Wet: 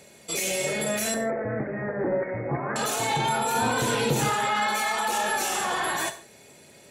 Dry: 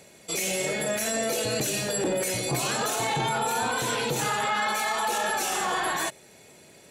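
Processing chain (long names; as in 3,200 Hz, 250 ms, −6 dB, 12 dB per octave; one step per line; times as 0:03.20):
0:01.14–0:02.76: Butterworth low-pass 2,100 Hz 96 dB per octave
0:03.54–0:04.30: low-shelf EQ 470 Hz +7 dB
reverb whose tail is shaped and stops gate 180 ms falling, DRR 8 dB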